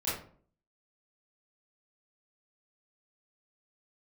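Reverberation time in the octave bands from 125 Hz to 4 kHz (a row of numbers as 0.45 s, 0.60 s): 0.60 s, 0.60 s, 0.55 s, 0.45 s, 0.35 s, 0.30 s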